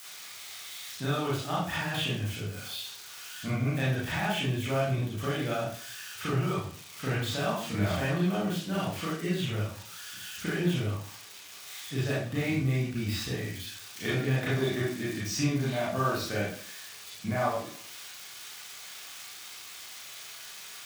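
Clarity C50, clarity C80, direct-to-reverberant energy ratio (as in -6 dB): 1.0 dB, 6.0 dB, -8.5 dB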